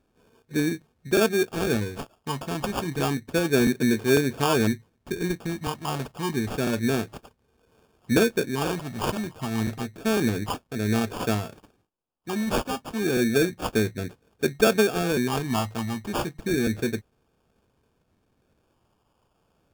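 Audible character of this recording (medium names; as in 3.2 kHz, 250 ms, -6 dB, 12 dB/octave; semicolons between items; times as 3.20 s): phasing stages 4, 0.3 Hz, lowest notch 420–2300 Hz; aliases and images of a low sample rate 2 kHz, jitter 0%; Vorbis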